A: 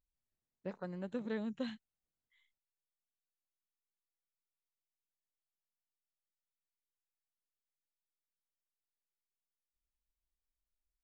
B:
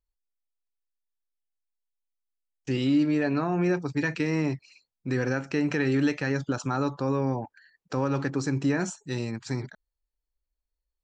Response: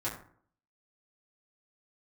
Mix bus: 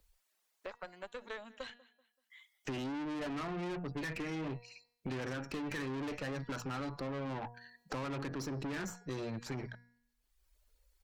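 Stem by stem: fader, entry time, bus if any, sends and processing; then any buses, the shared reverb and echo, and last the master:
+1.0 dB, 0.00 s, no send, echo send -24 dB, HPF 710 Hz 12 dB/oct; reverb removal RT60 0.83 s
-2.5 dB, 0.00 s, no send, no echo send, notches 60/120/180/240 Hz; spectral gate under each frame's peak -30 dB strong; LFO bell 0.65 Hz 520–5200 Hz +7 dB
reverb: off
echo: feedback echo 0.191 s, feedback 21%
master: de-hum 239.3 Hz, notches 23; tube stage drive 37 dB, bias 0.65; three-band squash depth 70%

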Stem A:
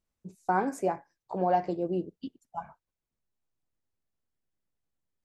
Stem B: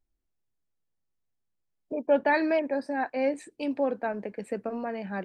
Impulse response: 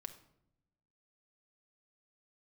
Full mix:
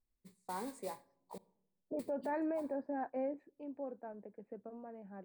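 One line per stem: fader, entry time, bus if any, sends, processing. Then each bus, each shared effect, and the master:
-16.5 dB, 0.00 s, muted 1.38–1.99, send -5 dB, modulation noise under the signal 13 dB; ripple EQ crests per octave 0.96, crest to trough 9 dB
3.21 s -7.5 dB -> 3.69 s -16 dB, 0.00 s, send -24 dB, LPF 1000 Hz 12 dB/oct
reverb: on, RT60 0.80 s, pre-delay 5 ms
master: limiter -30 dBFS, peak gain reduction 9.5 dB

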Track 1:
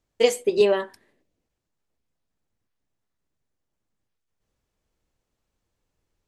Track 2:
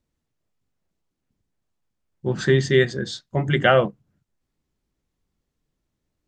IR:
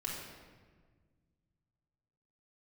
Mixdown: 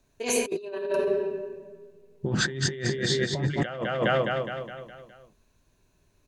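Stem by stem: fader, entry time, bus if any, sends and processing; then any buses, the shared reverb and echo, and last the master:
-2.5 dB, 0.00 s, send -4.5 dB, no echo send, ripple EQ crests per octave 1.5, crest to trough 12 dB; auto duck -14 dB, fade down 1.90 s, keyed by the second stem
-1.0 dB, 0.00 s, no send, echo send -7 dB, dry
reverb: on, RT60 1.6 s, pre-delay 3 ms
echo: feedback echo 0.207 s, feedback 50%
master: negative-ratio compressor -29 dBFS, ratio -1

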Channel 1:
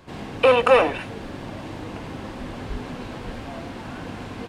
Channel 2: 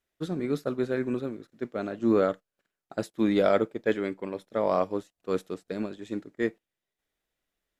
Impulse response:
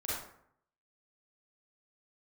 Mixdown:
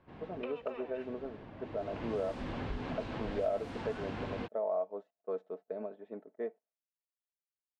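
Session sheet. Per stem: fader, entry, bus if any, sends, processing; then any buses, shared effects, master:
1.53 s -15.5 dB -> 2.12 s -2.5 dB, 0.00 s, no send, compressor 4:1, threshold -26 dBFS, peak gain reduction 13.5 dB
+2.0 dB, 0.00 s, no send, expander -52 dBFS; band-pass 640 Hz, Q 3.2; comb 4.6 ms, depth 58%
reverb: off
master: low-pass opened by the level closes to 2200 Hz, open at -21 dBFS; compressor 2.5:1, threshold -35 dBFS, peak gain reduction 12.5 dB

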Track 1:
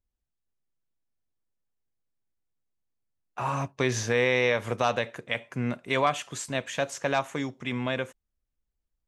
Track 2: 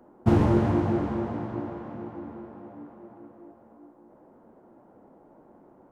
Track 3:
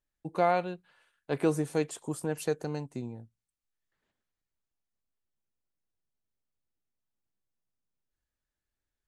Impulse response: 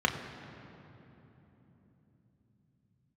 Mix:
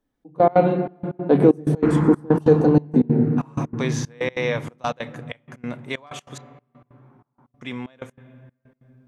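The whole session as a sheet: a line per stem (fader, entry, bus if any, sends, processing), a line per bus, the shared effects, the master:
-0.5 dB, 0.00 s, muted 6.38–7.61, send -22.5 dB, dry
-4.5 dB, 1.55 s, no send, LPF 4600 Hz; band shelf 1400 Hz +9 dB; endless phaser -0.59 Hz
+2.0 dB, 0.00 s, send -6.5 dB, bell 250 Hz +14.5 dB 2.5 oct; limiter -12.5 dBFS, peak gain reduction 8 dB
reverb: on, RT60 3.6 s, pre-delay 3 ms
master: step gate "xxx..x.x" 189 bpm -24 dB

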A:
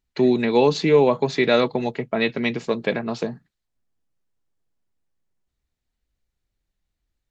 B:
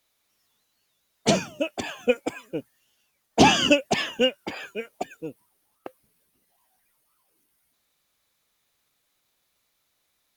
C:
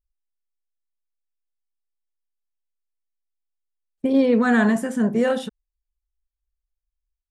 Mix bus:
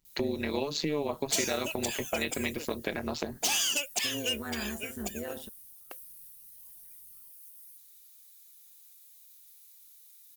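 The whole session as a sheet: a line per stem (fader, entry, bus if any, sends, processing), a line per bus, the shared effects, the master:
+2.5 dB, 0.00 s, bus A, no send, comb 3.1 ms, depth 34%
-7.0 dB, 0.05 s, no bus, no send, tilt +4.5 dB/oct; soft clip -16 dBFS, distortion -9 dB
-13.0 dB, 0.00 s, bus A, no send, dry
bus A: 0.0 dB, AM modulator 150 Hz, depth 75%; compressor 2.5:1, threshold -26 dBFS, peak gain reduction 10 dB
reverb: off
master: high shelf 4800 Hz +11 dB; compressor 1.5:1, threshold -36 dBFS, peak gain reduction 6.5 dB

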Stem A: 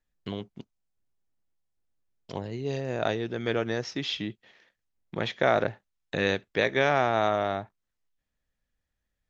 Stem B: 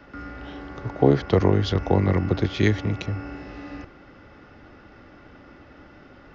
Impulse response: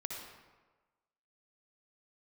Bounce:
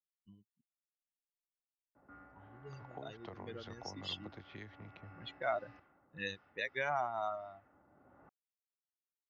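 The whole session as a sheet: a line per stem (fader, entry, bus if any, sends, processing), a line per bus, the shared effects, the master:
-6.0 dB, 0.00 s, no send, per-bin expansion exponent 3
-6.5 dB, 1.95 s, no send, HPF 85 Hz; compressor 5:1, threshold -24 dBFS, peak gain reduction 12 dB; LPF 3000 Hz 6 dB/oct; auto duck -10 dB, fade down 0.65 s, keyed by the first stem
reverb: off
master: low-pass opened by the level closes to 570 Hz, open at -37 dBFS; resonant low shelf 580 Hz -6.5 dB, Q 1.5

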